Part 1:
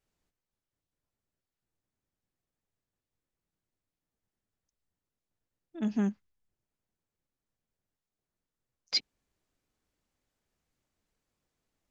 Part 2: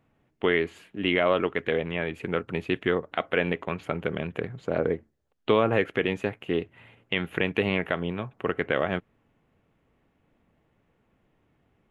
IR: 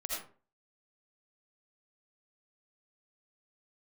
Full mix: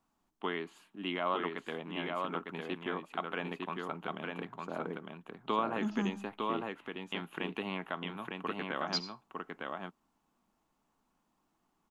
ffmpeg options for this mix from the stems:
-filter_complex "[0:a]alimiter=limit=0.0841:level=0:latency=1,volume=0.841,asplit=2[s0][s1];[s1]volume=0.266[s2];[1:a]highpass=f=150:w=0.5412,highpass=f=150:w=1.3066,volume=0.501,asplit=2[s3][s4];[s4]volume=0.668[s5];[2:a]atrim=start_sample=2205[s6];[s2][s6]afir=irnorm=-1:irlink=0[s7];[s5]aecho=0:1:905:1[s8];[s0][s3][s7][s8]amix=inputs=4:normalize=0,equalizer=f=125:t=o:w=1:g=-9,equalizer=f=500:t=o:w=1:g=-12,equalizer=f=1000:t=o:w=1:g=8,equalizer=f=2000:t=o:w=1:g=-10"

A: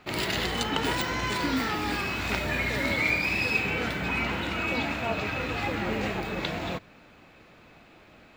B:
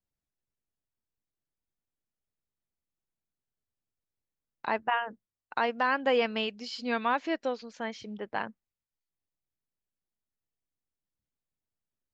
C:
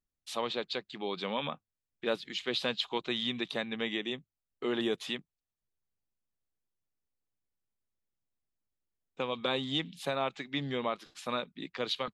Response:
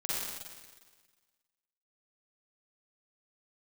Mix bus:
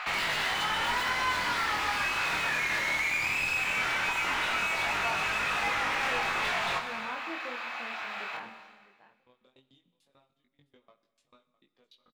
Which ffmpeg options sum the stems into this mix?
-filter_complex "[0:a]highpass=f=830:w=0.5412,highpass=f=830:w=1.3066,asplit=2[s0][s1];[s1]highpass=f=720:p=1,volume=56.2,asoftclip=type=tanh:threshold=0.299[s2];[s0][s2]amix=inputs=2:normalize=0,lowpass=f=1900:p=1,volume=0.501,volume=0.891,asplit=2[s3][s4];[s4]volume=0.251[s5];[1:a]volume=0.501,asplit=3[s6][s7][s8];[s7]volume=0.168[s9];[s8]volume=0.112[s10];[2:a]asoftclip=type=tanh:threshold=0.0841,aeval=exprs='val(0)*pow(10,-32*if(lt(mod(6.8*n/s,1),2*abs(6.8)/1000),1-mod(6.8*n/s,1)/(2*abs(6.8)/1000),(mod(6.8*n/s,1)-2*abs(6.8)/1000)/(1-2*abs(6.8)/1000))/20)':c=same,volume=0.106,asplit=3[s11][s12][s13];[s12]volume=0.112[s14];[s13]volume=0.133[s15];[3:a]atrim=start_sample=2205[s16];[s5][s9][s14]amix=inputs=3:normalize=0[s17];[s17][s16]afir=irnorm=-1:irlink=0[s18];[s10][s15]amix=inputs=2:normalize=0,aecho=0:1:658:1[s19];[s3][s6][s11][s18][s19]amix=inputs=5:normalize=0,flanger=delay=19.5:depth=6.4:speed=0.18,acompressor=threshold=0.01:ratio=1.5"

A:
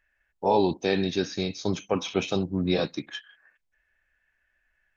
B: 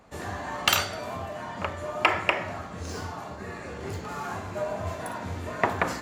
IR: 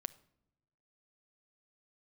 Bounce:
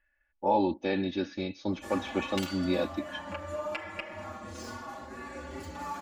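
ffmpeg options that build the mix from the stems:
-filter_complex "[0:a]lowpass=2900,volume=0.531[s0];[1:a]acompressor=threshold=0.0316:ratio=8,asplit=2[s1][s2];[s2]adelay=5.9,afreqshift=0.36[s3];[s1][s3]amix=inputs=2:normalize=1,adelay=1700,volume=0.708[s4];[s0][s4]amix=inputs=2:normalize=0,aecho=1:1:3.5:0.84"

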